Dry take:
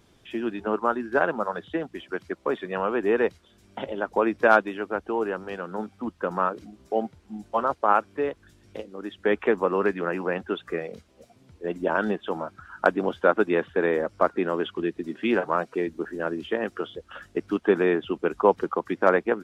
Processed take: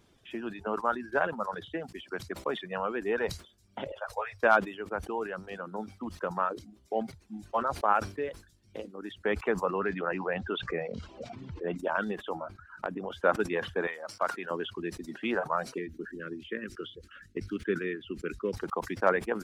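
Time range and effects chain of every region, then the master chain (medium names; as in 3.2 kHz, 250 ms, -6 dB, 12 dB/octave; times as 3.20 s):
3.92–4.43 s: elliptic band-stop 110–530 Hz + three-phase chorus
9.73–11.78 s: distance through air 150 m + level flattener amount 50%
12.34–13.14 s: compression 16:1, threshold -23 dBFS + treble shelf 3.2 kHz -7 dB
13.87–14.51 s: high-pass 220 Hz + peaking EQ 310 Hz -10.5 dB 2 oct
15.78–18.53 s: Chebyshev band-stop 370–1700 Hz + treble shelf 3.9 kHz -7 dB
whole clip: reverb removal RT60 0.96 s; dynamic bell 320 Hz, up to -5 dB, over -34 dBFS, Q 1.3; decay stretcher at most 140 dB/s; trim -4 dB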